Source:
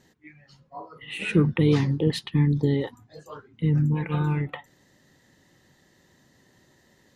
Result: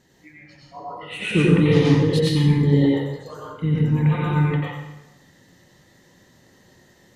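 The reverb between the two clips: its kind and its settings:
dense smooth reverb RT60 0.97 s, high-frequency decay 0.85×, pre-delay 80 ms, DRR −5 dB

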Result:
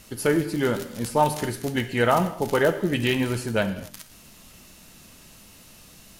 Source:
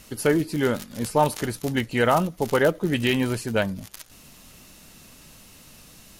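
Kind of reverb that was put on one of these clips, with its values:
reverb whose tail is shaped and stops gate 290 ms falling, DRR 8 dB
level −1 dB

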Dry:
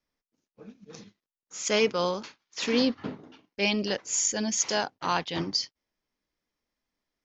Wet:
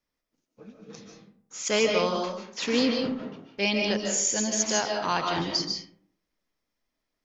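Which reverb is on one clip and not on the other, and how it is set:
comb and all-pass reverb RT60 0.63 s, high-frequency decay 0.45×, pre-delay 105 ms, DRR 2 dB

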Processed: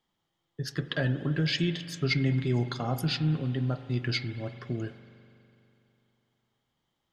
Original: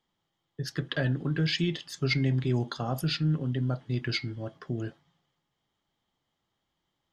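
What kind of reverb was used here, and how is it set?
spring reverb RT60 3 s, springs 41 ms, chirp 75 ms, DRR 11.5 dB

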